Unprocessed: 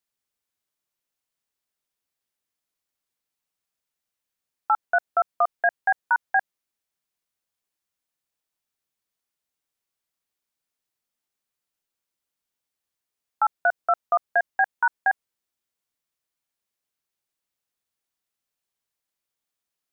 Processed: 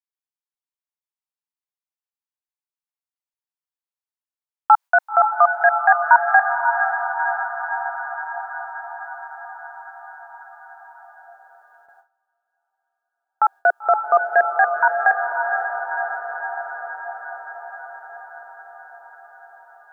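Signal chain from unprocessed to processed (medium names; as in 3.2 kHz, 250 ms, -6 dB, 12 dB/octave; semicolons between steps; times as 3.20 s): echo that smears into a reverb 524 ms, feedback 70%, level -6 dB; high-pass sweep 890 Hz -> 390 Hz, 10.99–11.59 s; gate with hold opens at -45 dBFS; trim +3.5 dB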